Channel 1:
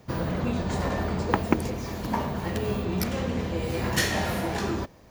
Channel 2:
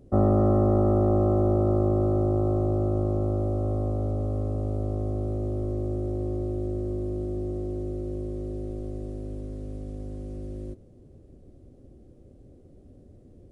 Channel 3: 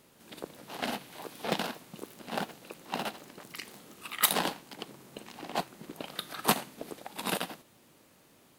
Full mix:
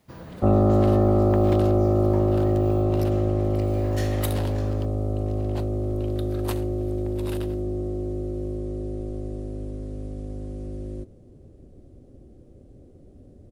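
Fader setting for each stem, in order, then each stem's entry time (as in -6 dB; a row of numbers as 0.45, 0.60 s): -12.5, +2.5, -9.0 dB; 0.00, 0.30, 0.00 s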